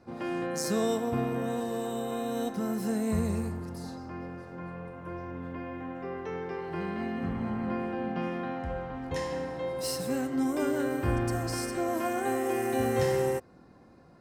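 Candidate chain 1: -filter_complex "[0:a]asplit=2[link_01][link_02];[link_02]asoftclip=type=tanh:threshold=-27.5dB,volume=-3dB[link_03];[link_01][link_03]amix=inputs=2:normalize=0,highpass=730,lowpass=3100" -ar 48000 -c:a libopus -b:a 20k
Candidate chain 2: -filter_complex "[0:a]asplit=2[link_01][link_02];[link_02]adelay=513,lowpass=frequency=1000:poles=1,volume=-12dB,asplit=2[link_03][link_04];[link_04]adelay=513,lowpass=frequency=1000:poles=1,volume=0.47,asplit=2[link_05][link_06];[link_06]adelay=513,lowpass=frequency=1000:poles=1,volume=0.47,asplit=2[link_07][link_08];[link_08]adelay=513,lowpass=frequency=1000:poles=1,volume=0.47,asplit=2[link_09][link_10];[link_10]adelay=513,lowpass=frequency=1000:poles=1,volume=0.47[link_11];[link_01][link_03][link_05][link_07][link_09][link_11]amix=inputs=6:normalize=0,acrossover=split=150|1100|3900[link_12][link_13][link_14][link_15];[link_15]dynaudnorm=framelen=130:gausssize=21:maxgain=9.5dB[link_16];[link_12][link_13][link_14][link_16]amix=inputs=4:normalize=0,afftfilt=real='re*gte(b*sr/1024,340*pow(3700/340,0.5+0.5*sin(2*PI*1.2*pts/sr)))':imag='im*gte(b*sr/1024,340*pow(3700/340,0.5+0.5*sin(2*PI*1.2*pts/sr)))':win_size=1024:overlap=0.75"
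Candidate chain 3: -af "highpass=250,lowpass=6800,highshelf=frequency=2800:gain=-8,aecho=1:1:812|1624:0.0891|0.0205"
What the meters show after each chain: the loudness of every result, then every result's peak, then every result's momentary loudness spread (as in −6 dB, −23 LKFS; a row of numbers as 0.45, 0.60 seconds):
−36.5, −34.5, −34.0 LKFS; −20.0, −15.0, −18.0 dBFS; 12, 20, 13 LU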